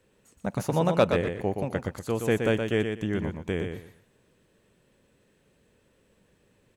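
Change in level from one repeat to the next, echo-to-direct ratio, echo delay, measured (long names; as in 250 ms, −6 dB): −13.0 dB, −6.0 dB, 121 ms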